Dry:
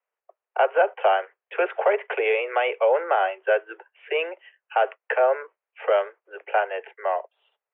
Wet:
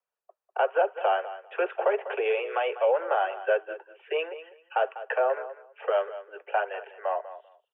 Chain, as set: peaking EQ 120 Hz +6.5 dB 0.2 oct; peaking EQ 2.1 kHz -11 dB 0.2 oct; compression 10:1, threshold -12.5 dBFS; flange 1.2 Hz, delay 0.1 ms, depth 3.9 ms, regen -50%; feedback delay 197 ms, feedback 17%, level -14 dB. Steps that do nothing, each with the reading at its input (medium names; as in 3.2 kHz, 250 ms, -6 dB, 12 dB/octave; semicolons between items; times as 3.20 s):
peaking EQ 120 Hz: input has nothing below 320 Hz